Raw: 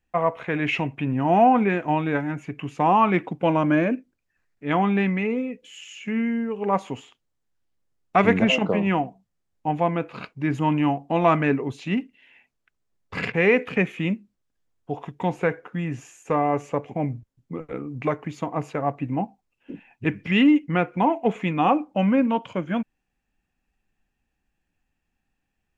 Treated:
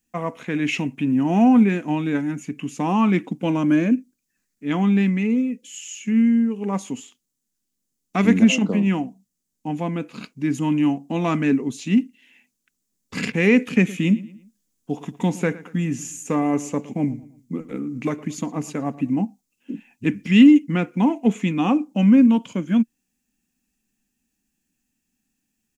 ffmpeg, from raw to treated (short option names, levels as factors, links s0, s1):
-filter_complex "[0:a]asettb=1/sr,asplit=3[s0][s1][s2];[s0]atrim=end=13.684[s3];[s1]atrim=start=13.68:end=19.1,asetpts=PTS-STARTPTS,afade=t=in:d=0.004:c=qsin,afade=t=out:st=5.416:d=0.004:c=qsin,asplit=2[s4][s5];[s5]adelay=113,lowpass=f=4600:p=1,volume=0.126,asplit=2[s6][s7];[s7]adelay=113,lowpass=f=4600:p=1,volume=0.39,asplit=2[s8][s9];[s9]adelay=113,lowpass=f=4600:p=1,volume=0.39[s10];[s4][s6][s8][s10]amix=inputs=4:normalize=0,atrim=end_sample=239022[s11];[s2]atrim=start=19.096[s12];[s3][s11]acrossfade=d=0.004:c1=hsin:c2=qsin[s13];[s13][s12]acrossfade=d=0.004:c1=qsin:c2=hsin,firequalizer=gain_entry='entry(110,0);entry(230,13);entry(360,1);entry(630,-7);entry(6500,14)':delay=0.05:min_phase=1,dynaudnorm=f=930:g=9:m=3.76,lowshelf=f=190:g=-8"